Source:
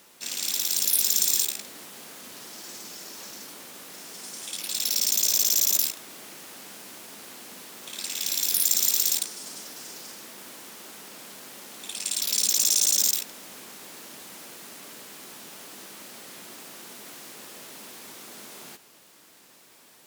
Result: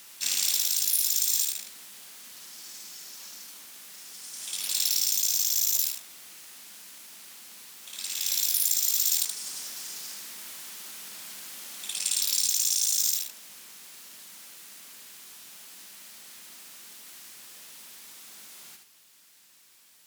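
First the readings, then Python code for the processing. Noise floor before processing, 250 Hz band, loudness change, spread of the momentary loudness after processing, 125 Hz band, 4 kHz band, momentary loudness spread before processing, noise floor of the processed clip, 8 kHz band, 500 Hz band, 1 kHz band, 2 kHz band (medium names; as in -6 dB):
-55 dBFS, under -10 dB, -2.5 dB, 22 LU, no reading, -1.5 dB, 22 LU, -58 dBFS, -2.0 dB, under -10 dB, -7.5 dB, -3.0 dB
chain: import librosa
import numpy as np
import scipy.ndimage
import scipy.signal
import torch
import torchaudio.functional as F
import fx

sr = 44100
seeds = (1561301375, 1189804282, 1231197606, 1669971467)

p1 = fx.dynamic_eq(x, sr, hz=680.0, q=0.76, threshold_db=-49.0, ratio=4.0, max_db=4)
p2 = p1 + fx.echo_single(p1, sr, ms=75, db=-6.0, dry=0)
p3 = fx.rider(p2, sr, range_db=10, speed_s=0.5)
p4 = fx.tone_stack(p3, sr, knobs='5-5-5')
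y = F.gain(torch.from_numpy(p4), 4.5).numpy()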